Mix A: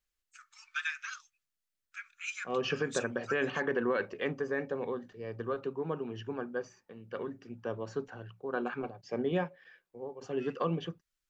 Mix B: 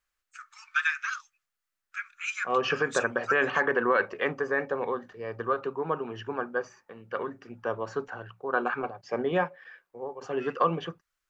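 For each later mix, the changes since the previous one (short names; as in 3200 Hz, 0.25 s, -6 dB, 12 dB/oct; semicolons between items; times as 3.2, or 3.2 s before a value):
master: add EQ curve 250 Hz 0 dB, 1200 Hz +12 dB, 3400 Hz +3 dB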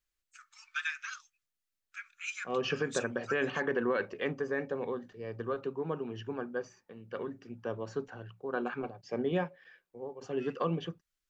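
master: add EQ curve 250 Hz 0 dB, 1200 Hz -12 dB, 3400 Hz -3 dB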